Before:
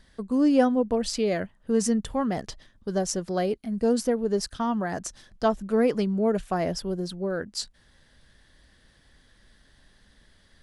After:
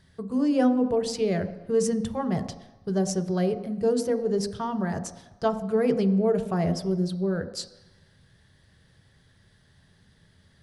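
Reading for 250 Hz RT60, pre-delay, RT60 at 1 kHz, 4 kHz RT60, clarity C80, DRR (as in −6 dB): 0.80 s, 3 ms, 1.1 s, 1.1 s, 13.5 dB, 8.0 dB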